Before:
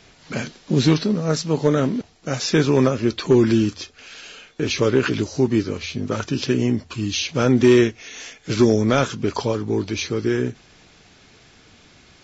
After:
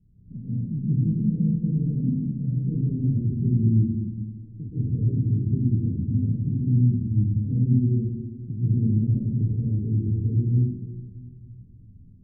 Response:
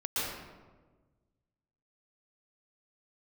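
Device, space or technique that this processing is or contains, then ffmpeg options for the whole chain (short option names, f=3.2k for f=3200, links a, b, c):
club heard from the street: -filter_complex "[0:a]alimiter=limit=-15dB:level=0:latency=1,lowpass=f=190:w=0.5412,lowpass=f=190:w=1.3066[a];[1:a]atrim=start_sample=2205[b];[a][b]afir=irnorm=-1:irlink=0"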